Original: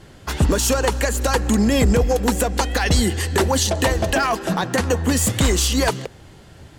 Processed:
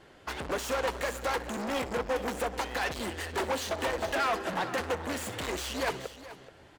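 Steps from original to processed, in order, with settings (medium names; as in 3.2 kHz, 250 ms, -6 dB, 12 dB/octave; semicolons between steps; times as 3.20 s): overload inside the chain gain 24 dB; multi-tap echo 63/429 ms -14.5/-11.5 dB; saturation -19 dBFS, distortion -26 dB; tone controls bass -13 dB, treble -9 dB; upward expansion 1.5:1, over -38 dBFS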